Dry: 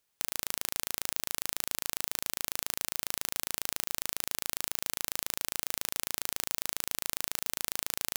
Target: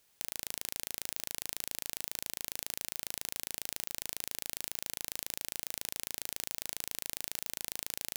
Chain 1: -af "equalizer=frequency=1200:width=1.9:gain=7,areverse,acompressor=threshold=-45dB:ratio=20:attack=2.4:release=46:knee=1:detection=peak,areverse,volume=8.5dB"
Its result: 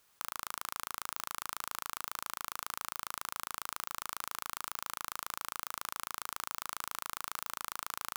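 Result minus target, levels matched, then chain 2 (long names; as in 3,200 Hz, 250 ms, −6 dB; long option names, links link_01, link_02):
1,000 Hz band +16.5 dB
-af "equalizer=frequency=1200:width=1.9:gain=-2.5,areverse,acompressor=threshold=-45dB:ratio=20:attack=2.4:release=46:knee=1:detection=peak,areverse,volume=8.5dB"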